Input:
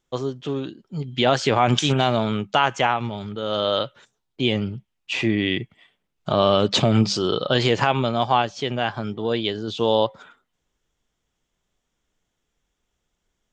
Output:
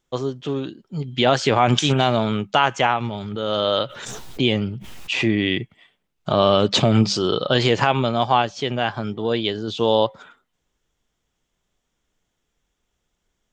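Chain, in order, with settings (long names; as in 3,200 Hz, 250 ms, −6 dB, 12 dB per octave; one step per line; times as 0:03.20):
0:03.14–0:05.25: background raised ahead of every attack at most 42 dB per second
level +1.5 dB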